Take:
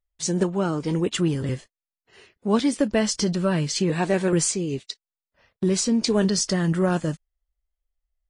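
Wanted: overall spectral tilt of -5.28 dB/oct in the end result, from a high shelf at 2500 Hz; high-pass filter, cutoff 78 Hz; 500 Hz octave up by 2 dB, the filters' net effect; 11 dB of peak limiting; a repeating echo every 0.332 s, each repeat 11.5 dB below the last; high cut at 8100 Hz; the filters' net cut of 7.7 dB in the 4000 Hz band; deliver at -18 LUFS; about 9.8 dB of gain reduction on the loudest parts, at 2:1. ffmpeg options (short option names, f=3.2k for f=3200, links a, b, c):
-af "highpass=78,lowpass=8.1k,equalizer=f=500:t=o:g=3,highshelf=f=2.5k:g=-4,equalizer=f=4k:t=o:g=-6,acompressor=threshold=-34dB:ratio=2,alimiter=level_in=4.5dB:limit=-24dB:level=0:latency=1,volume=-4.5dB,aecho=1:1:332|664|996:0.266|0.0718|0.0194,volume=19dB"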